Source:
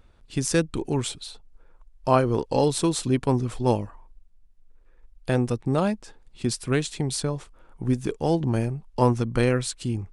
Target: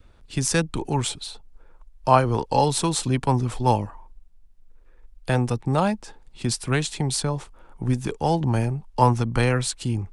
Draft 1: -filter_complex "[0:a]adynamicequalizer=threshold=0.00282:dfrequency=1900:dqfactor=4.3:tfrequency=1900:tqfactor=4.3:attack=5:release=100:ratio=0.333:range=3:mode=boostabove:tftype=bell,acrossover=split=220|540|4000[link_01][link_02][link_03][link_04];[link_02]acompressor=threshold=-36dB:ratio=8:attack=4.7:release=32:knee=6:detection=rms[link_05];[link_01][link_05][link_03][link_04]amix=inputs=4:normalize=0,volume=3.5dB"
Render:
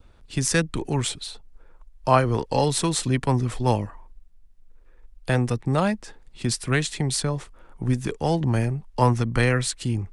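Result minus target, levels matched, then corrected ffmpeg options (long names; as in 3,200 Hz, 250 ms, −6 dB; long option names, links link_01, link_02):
1,000 Hz band −3.0 dB
-filter_complex "[0:a]adynamicequalizer=threshold=0.00282:dfrequency=860:dqfactor=4.3:tfrequency=860:tqfactor=4.3:attack=5:release=100:ratio=0.333:range=3:mode=boostabove:tftype=bell,acrossover=split=220|540|4000[link_01][link_02][link_03][link_04];[link_02]acompressor=threshold=-36dB:ratio=8:attack=4.7:release=32:knee=6:detection=rms[link_05];[link_01][link_05][link_03][link_04]amix=inputs=4:normalize=0,volume=3.5dB"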